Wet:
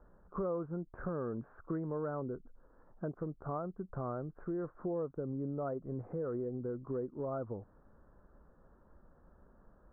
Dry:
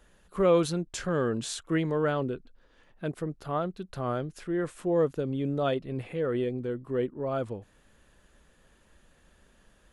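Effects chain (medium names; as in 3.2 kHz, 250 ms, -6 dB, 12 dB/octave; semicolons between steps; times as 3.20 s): steep low-pass 1.4 kHz 48 dB/octave; compression 4:1, threshold -36 dBFS, peak gain reduction 15 dB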